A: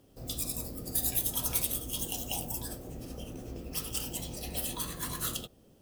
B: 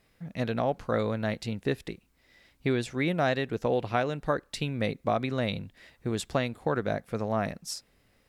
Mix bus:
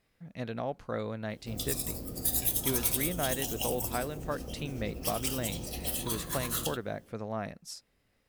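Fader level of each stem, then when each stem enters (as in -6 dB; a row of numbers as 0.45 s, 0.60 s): +1.0 dB, -7.0 dB; 1.30 s, 0.00 s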